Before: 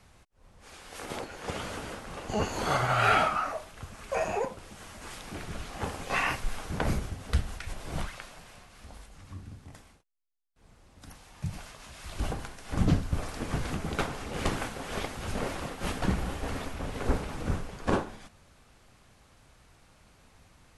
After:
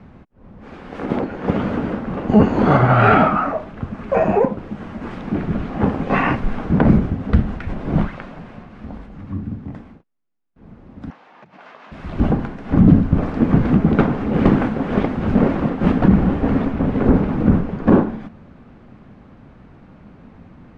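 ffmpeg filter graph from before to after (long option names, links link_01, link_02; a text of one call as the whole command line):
ffmpeg -i in.wav -filter_complex "[0:a]asettb=1/sr,asplit=3[link_01][link_02][link_03];[link_01]atrim=end=11.104[link_04];[link_02]atrim=start=11.1:end=11.92,asetpts=PTS-STARTPTS,afade=type=in:duration=0.004:curve=qsin,afade=type=out:start_time=0.816:duration=0.004:curve=qsin,acompressor=threshold=-41dB:ratio=16:attack=3.2:release=140:knee=1:detection=peak,highpass=630,lowpass=5600[link_05];[link_03]atrim=start=11.916[link_06];[link_04][link_05]acrossfade=duration=0.004:curve1=hsin:curve2=qsin[link_07];[link_07][link_06]acrossfade=duration=0.004:curve1=qsin:curve2=hsin,lowpass=1900,equalizer=frequency=220:width_type=o:width=1.7:gain=14.5,alimiter=level_in=10.5dB:limit=-1dB:release=50:level=0:latency=1,volume=-1dB" out.wav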